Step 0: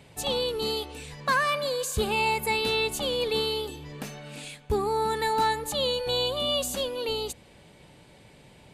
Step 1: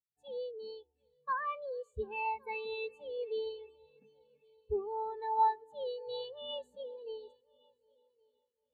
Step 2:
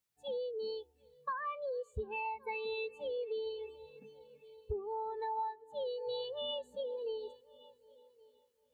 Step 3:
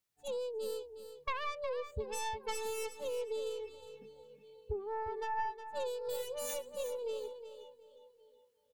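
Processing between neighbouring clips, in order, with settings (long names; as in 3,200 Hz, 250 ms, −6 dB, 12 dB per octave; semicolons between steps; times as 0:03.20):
mains-hum notches 50/100/150 Hz; echo machine with several playback heads 372 ms, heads all three, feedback 55%, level −15.5 dB; every bin expanded away from the loudest bin 2.5 to 1; level −5.5 dB
downward compressor 8 to 1, threshold −45 dBFS, peak gain reduction 20.5 dB; level +9 dB
stylus tracing distortion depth 0.36 ms; repeating echo 362 ms, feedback 21%, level −10.5 dB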